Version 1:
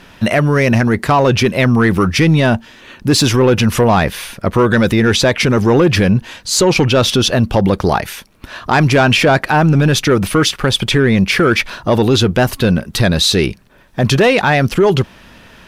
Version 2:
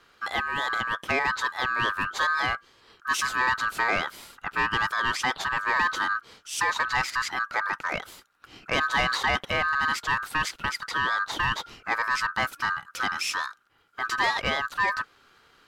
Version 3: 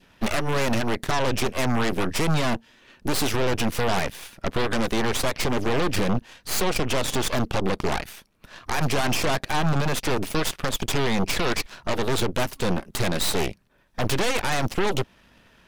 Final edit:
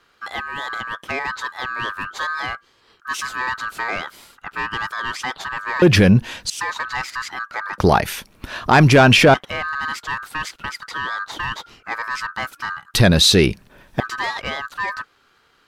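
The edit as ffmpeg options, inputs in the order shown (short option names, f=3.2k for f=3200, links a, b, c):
-filter_complex "[0:a]asplit=3[a][b][c];[1:a]asplit=4[d][e][f][g];[d]atrim=end=5.822[h];[a]atrim=start=5.818:end=6.502[i];[e]atrim=start=6.498:end=7.782[j];[b]atrim=start=7.778:end=9.342[k];[f]atrim=start=9.338:end=12.942[l];[c]atrim=start=12.938:end=14.002[m];[g]atrim=start=13.998[n];[h][i]acrossfade=d=0.004:c1=hsin:c2=hsin[o];[o][j]acrossfade=d=0.004:c1=hsin:c2=hsin[p];[p][k]acrossfade=d=0.004:c1=hsin:c2=hsin[q];[q][l]acrossfade=d=0.004:c1=hsin:c2=hsin[r];[r][m]acrossfade=d=0.004:c1=hsin:c2=hsin[s];[s][n]acrossfade=d=0.004:c1=hsin:c2=hsin"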